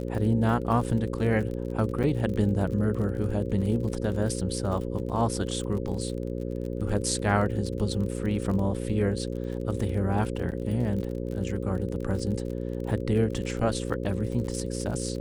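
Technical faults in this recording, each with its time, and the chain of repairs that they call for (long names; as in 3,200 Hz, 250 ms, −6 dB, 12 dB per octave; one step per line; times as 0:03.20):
mains buzz 60 Hz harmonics 9 −32 dBFS
surface crackle 37 per second −34 dBFS
0:02.03–0:02.04: drop-out 7.3 ms
0:10.51–0:10.52: drop-out 8.7 ms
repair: click removal
hum removal 60 Hz, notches 9
repair the gap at 0:02.03, 7.3 ms
repair the gap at 0:10.51, 8.7 ms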